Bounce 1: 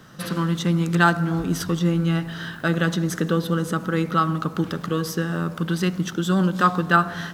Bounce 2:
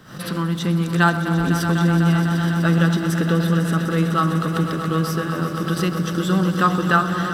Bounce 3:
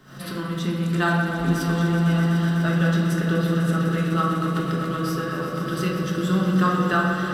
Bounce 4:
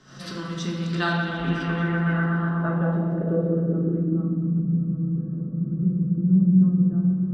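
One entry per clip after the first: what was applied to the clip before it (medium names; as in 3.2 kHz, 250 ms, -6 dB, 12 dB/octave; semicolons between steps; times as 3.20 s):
band-stop 6.5 kHz, Q 9.9; echo with a slow build-up 125 ms, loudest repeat 5, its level -12 dB; swell ahead of each attack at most 120 dB/s
reverberation RT60 1.4 s, pre-delay 3 ms, DRR -2 dB; trim -7 dB
low-pass sweep 6 kHz -> 190 Hz, 0.71–4.66 s; trim -3.5 dB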